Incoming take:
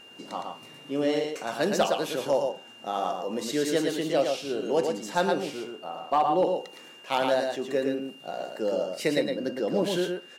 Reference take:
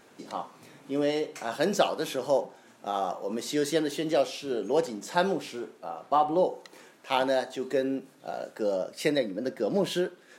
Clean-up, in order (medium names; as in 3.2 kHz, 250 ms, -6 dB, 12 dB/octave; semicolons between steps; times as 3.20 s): clip repair -14.5 dBFS; band-stop 2.8 kHz, Q 30; inverse comb 114 ms -4.5 dB